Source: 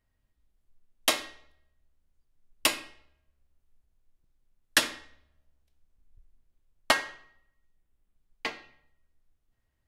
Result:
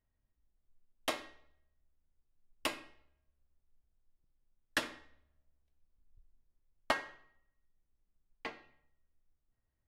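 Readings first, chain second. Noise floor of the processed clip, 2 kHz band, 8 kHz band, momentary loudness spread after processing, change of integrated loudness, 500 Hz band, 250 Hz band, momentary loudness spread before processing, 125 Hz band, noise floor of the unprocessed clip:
−83 dBFS, −9.5 dB, −16.5 dB, 18 LU, −11.0 dB, −6.5 dB, −6.0 dB, 15 LU, −6.0 dB, −77 dBFS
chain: high-shelf EQ 2,800 Hz −11.5 dB
level −6 dB

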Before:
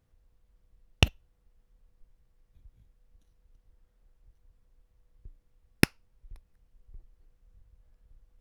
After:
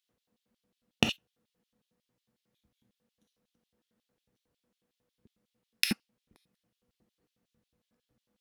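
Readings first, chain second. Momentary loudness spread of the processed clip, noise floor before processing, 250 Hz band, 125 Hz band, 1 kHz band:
8 LU, −70 dBFS, −3.0 dB, −11.0 dB, −4.0 dB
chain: reverb whose tail is shaped and stops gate 100 ms flat, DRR 4.5 dB
auto-filter high-pass square 5.5 Hz 220–3,400 Hz
level −3 dB

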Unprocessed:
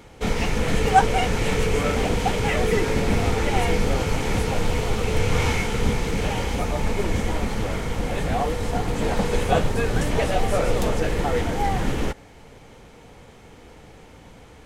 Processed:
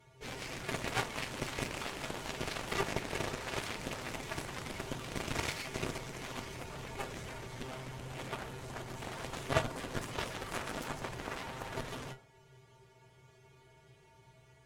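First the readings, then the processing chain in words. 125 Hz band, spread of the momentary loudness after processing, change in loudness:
−18.5 dB, 9 LU, −16.0 dB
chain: tuned comb filter 130 Hz, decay 0.16 s, harmonics odd, mix 100%
harmonic generator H 3 −11 dB, 7 −24 dB, 8 −30 dB, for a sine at −18.5 dBFS
hum removal 52.15 Hz, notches 29
level +7.5 dB

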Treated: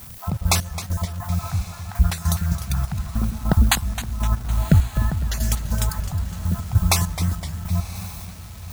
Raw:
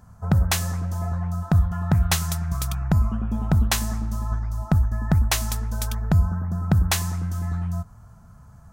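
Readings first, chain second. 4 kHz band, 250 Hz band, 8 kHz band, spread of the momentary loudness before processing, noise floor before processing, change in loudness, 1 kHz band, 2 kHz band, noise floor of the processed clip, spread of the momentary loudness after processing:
+2.0 dB, −0.5 dB, +2.0 dB, 7 LU, −48 dBFS, +0.5 dB, +1.5 dB, +1.5 dB, −37 dBFS, 11 LU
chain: time-frequency cells dropped at random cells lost 24%
background noise violet −47 dBFS
gate pattern "xx.x..x.xx...x." 100 BPM −12 dB
feedback delay with all-pass diffusion 1,058 ms, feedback 57%, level −15.5 dB
surface crackle 560 per second −40 dBFS
feedback echo with a swinging delay time 258 ms, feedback 52%, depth 201 cents, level −13 dB
level +5 dB

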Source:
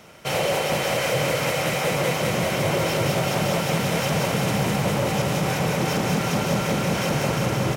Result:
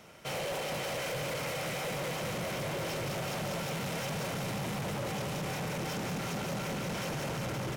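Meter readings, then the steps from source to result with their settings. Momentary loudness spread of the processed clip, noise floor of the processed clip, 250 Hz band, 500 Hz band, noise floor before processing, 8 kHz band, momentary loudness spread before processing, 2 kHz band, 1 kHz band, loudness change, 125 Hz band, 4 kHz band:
1 LU, −36 dBFS, −13.0 dB, −13.0 dB, −26 dBFS, −11.0 dB, 1 LU, −11.5 dB, −12.0 dB, −12.5 dB, −13.0 dB, −11.5 dB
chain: soft clipping −26 dBFS, distortion −9 dB
level −6.5 dB

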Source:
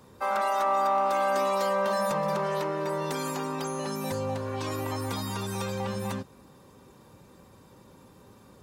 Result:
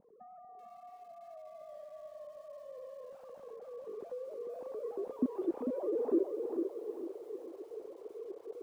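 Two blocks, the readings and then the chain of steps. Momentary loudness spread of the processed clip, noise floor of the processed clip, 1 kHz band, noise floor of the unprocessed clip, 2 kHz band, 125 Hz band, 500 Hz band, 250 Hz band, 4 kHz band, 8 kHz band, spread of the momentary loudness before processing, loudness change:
18 LU, −55 dBFS, −24.5 dB, −55 dBFS, below −30 dB, below −30 dB, −8.0 dB, −3.5 dB, below −30 dB, below −30 dB, 7 LU, −11.0 dB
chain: three sine waves on the formant tracks
downward compressor 6 to 1, threshold −40 dBFS, peak gain reduction 19 dB
low-pass filter sweep 200 Hz → 400 Hz, 0:03.46–0:06.71
on a send: delay with a low-pass on its return 445 ms, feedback 41%, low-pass 2,600 Hz, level −5.5 dB
on the sum: feedback echo at a low word length 382 ms, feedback 35%, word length 11 bits, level −14.5 dB
level +10 dB

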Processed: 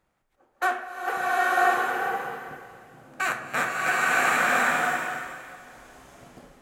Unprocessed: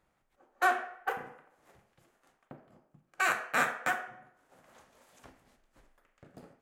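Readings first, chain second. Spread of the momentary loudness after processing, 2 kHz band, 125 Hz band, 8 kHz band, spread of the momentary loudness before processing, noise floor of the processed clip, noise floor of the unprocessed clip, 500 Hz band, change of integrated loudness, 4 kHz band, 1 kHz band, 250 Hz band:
17 LU, +10.0 dB, +10.0 dB, +10.0 dB, 12 LU, −72 dBFS, −76 dBFS, +10.5 dB, +7.0 dB, +10.0 dB, +10.0 dB, +10.0 dB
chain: slow-attack reverb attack 1,010 ms, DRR −8 dB
level +1.5 dB

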